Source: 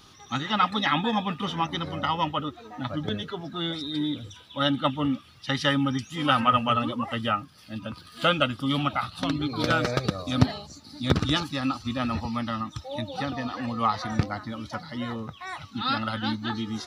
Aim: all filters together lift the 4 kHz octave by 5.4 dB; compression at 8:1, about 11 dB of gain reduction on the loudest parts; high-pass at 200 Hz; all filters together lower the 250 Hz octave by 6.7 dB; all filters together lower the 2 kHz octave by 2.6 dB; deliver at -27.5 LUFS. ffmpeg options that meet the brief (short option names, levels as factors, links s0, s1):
-af "highpass=200,equalizer=f=250:t=o:g=-6,equalizer=f=2000:t=o:g=-6,equalizer=f=4000:t=o:g=9,acompressor=threshold=0.0355:ratio=8,volume=2.11"